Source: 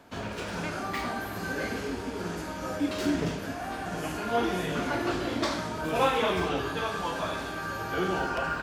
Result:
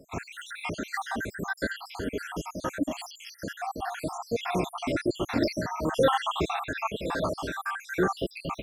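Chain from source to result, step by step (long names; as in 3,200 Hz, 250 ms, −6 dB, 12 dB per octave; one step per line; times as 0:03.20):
time-frequency cells dropped at random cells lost 74%
0:02.80–0:03.42: phaser with its sweep stopped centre 410 Hz, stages 6
level +5.5 dB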